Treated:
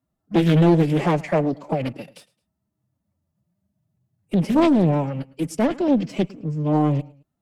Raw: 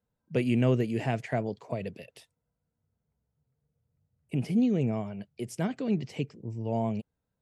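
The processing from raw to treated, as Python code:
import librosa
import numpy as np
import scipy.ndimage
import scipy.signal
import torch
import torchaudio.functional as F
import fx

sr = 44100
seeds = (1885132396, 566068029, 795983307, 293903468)

p1 = fx.cheby_harmonics(x, sr, harmonics=(8,), levels_db=(-32,), full_scale_db=-13.0)
p2 = fx.high_shelf(p1, sr, hz=4600.0, db=7.5)
p3 = fx.leveller(p2, sr, passes=1)
p4 = fx.pitch_keep_formants(p3, sr, semitones=5.0)
p5 = fx.high_shelf(p4, sr, hz=2100.0, db=-9.0)
p6 = p5 + fx.echo_feedback(p5, sr, ms=108, feedback_pct=35, wet_db=-22, dry=0)
p7 = fx.doppler_dist(p6, sr, depth_ms=0.57)
y = p7 * 10.0 ** (7.5 / 20.0)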